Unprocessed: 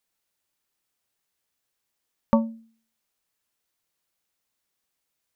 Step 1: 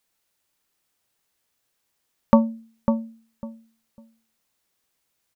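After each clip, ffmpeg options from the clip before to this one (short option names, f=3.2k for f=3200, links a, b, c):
-filter_complex "[0:a]asplit=2[a][b];[b]adelay=550,lowpass=f=830:p=1,volume=-5.5dB,asplit=2[c][d];[d]adelay=550,lowpass=f=830:p=1,volume=0.21,asplit=2[e][f];[f]adelay=550,lowpass=f=830:p=1,volume=0.21[g];[a][c][e][g]amix=inputs=4:normalize=0,volume=5dB"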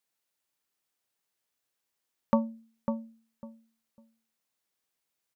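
-af "lowshelf=f=92:g=-10,volume=-8.5dB"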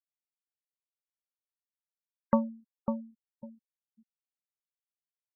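-af "afftfilt=real='re*gte(hypot(re,im),0.0141)':imag='im*gte(hypot(re,im),0.0141)':win_size=1024:overlap=0.75"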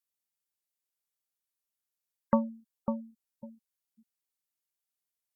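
-af "aemphasis=mode=production:type=cd"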